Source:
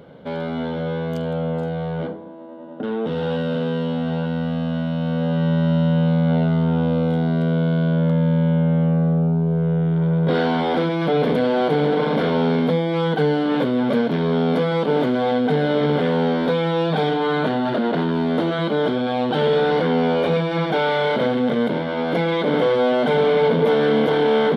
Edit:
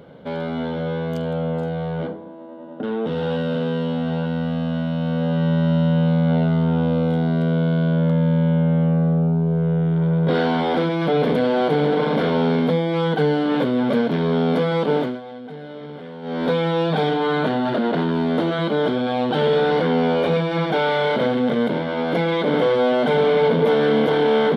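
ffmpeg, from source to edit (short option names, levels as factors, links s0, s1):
-filter_complex "[0:a]asplit=3[s0][s1][s2];[s0]atrim=end=15.21,asetpts=PTS-STARTPTS,afade=t=out:st=14.94:d=0.27:silence=0.149624[s3];[s1]atrim=start=15.21:end=16.22,asetpts=PTS-STARTPTS,volume=0.15[s4];[s2]atrim=start=16.22,asetpts=PTS-STARTPTS,afade=t=in:d=0.27:silence=0.149624[s5];[s3][s4][s5]concat=n=3:v=0:a=1"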